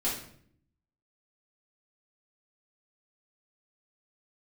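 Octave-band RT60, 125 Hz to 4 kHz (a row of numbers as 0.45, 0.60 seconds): 1.0, 0.95, 0.65, 0.55, 0.55, 0.50 seconds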